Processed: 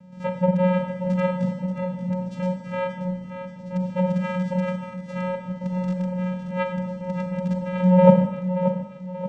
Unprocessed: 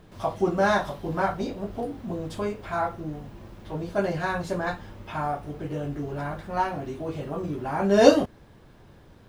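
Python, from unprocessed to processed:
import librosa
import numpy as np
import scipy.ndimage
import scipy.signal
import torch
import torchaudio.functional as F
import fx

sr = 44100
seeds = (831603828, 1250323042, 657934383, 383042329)

y = fx.rattle_buzz(x, sr, strikes_db=-28.0, level_db=-21.0)
y = fx.env_lowpass_down(y, sr, base_hz=1000.0, full_db=-18.5)
y = fx.vocoder(y, sr, bands=4, carrier='square', carrier_hz=182.0)
y = fx.echo_feedback(y, sr, ms=581, feedback_pct=42, wet_db=-9.5)
y = fx.rev_schroeder(y, sr, rt60_s=1.1, comb_ms=32, drr_db=6.5)
y = y * 10.0 ** (4.0 / 20.0)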